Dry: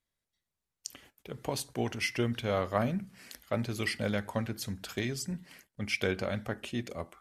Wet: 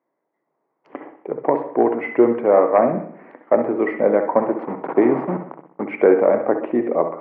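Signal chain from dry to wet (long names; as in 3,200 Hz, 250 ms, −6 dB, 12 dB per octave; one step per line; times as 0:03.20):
0:04.39–0:05.83: hold until the input has moved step −36 dBFS
flat-topped bell 550 Hz +15 dB 2.3 octaves
in parallel at −8 dB: sine wavefolder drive 6 dB, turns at −1 dBFS
on the sum: Chebyshev band-pass filter 150–2,100 Hz, order 4
automatic gain control gain up to 6 dB
on a send at −7 dB: convolution reverb, pre-delay 60 ms
on the sum: level −1 dB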